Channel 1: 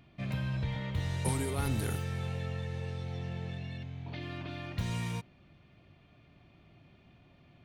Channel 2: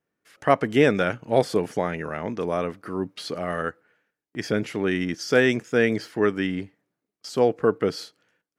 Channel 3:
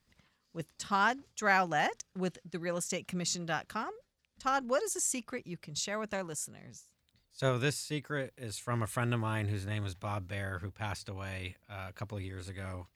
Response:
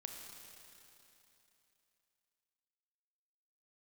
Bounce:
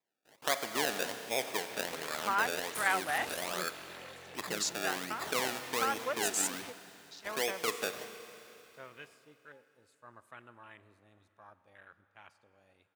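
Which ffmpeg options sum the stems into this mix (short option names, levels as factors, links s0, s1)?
-filter_complex "[0:a]aeval=exprs='0.1*(cos(1*acos(clip(val(0)/0.1,-1,1)))-cos(1*PI/2))+0.0398*(cos(7*acos(clip(val(0)/0.1,-1,1)))-cos(7*PI/2))':c=same,adelay=1500,volume=0.473,asplit=2[s0][s1];[s1]volume=0.473[s2];[1:a]acrusher=samples=29:mix=1:aa=0.000001:lfo=1:lforange=29:lforate=1.3,volume=0.708,asplit=3[s3][s4][s5];[s4]volume=0.531[s6];[2:a]afwtdn=0.0112,adelay=1350,volume=1.06,asplit=2[s7][s8];[s8]volume=0.119[s9];[s5]apad=whole_len=631017[s10];[s7][s10]sidechaingate=range=0.178:threshold=0.00631:ratio=16:detection=peak[s11];[s0][s3]amix=inputs=2:normalize=0,acompressor=threshold=0.0316:ratio=6,volume=1[s12];[3:a]atrim=start_sample=2205[s13];[s2][s6][s9]amix=inputs=3:normalize=0[s14];[s14][s13]afir=irnorm=-1:irlink=0[s15];[s11][s12][s15]amix=inputs=3:normalize=0,highpass=f=1200:p=1"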